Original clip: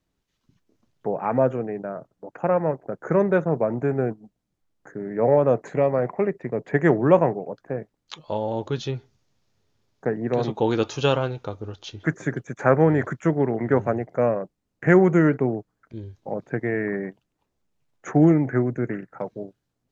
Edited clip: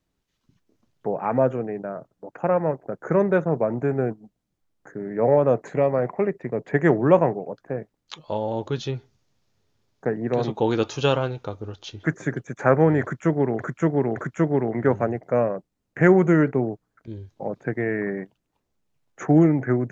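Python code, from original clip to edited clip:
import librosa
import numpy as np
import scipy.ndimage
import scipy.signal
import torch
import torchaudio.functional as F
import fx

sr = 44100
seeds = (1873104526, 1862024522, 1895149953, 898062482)

y = fx.edit(x, sr, fx.repeat(start_s=13.02, length_s=0.57, count=3), tone=tone)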